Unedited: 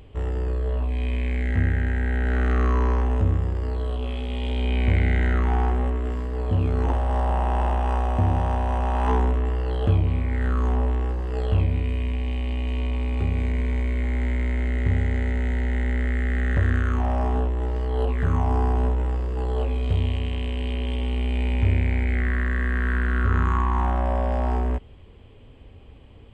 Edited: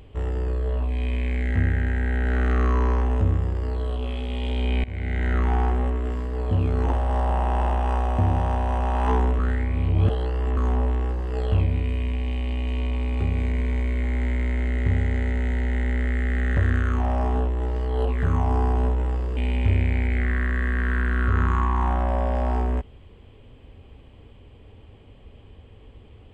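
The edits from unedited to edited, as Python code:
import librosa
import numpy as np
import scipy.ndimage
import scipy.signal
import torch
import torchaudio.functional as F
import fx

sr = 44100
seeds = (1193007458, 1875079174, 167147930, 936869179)

y = fx.edit(x, sr, fx.fade_in_from(start_s=4.84, length_s=0.56, floor_db=-20.5),
    fx.reverse_span(start_s=9.39, length_s=1.18),
    fx.cut(start_s=19.37, length_s=1.97), tone=tone)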